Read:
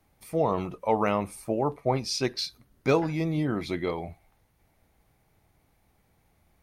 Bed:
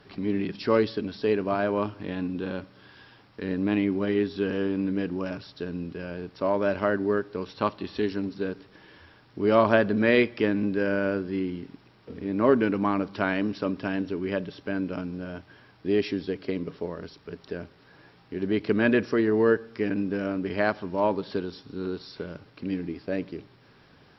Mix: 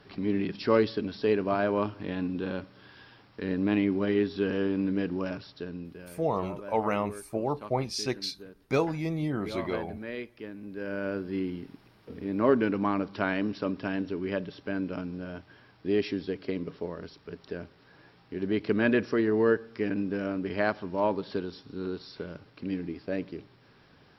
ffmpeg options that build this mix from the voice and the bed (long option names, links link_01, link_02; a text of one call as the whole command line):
ffmpeg -i stem1.wav -i stem2.wav -filter_complex "[0:a]adelay=5850,volume=-3dB[link_01];[1:a]volume=13.5dB,afade=type=out:start_time=5.27:duration=0.99:silence=0.158489,afade=type=in:start_time=10.63:duration=0.74:silence=0.188365[link_02];[link_01][link_02]amix=inputs=2:normalize=0" out.wav